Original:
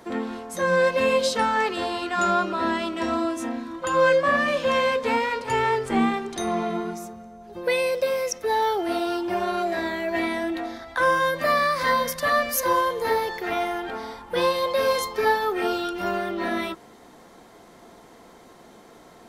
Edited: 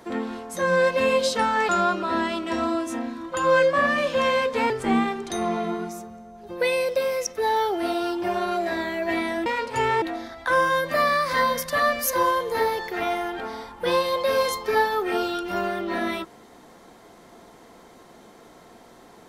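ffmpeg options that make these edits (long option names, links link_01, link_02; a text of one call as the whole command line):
ffmpeg -i in.wav -filter_complex "[0:a]asplit=5[link_01][link_02][link_03][link_04][link_05];[link_01]atrim=end=1.692[link_06];[link_02]atrim=start=2.188:end=5.202[link_07];[link_03]atrim=start=5.758:end=10.522[link_08];[link_04]atrim=start=5.198:end=5.762[link_09];[link_05]atrim=start=10.518[link_10];[link_06][link_07]acrossfade=duration=0.004:curve1=hsin:curve2=hsin[link_11];[link_11][link_08]acrossfade=duration=0.004:curve1=hsin:curve2=hsin[link_12];[link_12][link_09]acrossfade=duration=0.004:curve1=hsin:curve2=hsin[link_13];[link_13][link_10]acrossfade=duration=0.004:curve1=hsin:curve2=hsin" out.wav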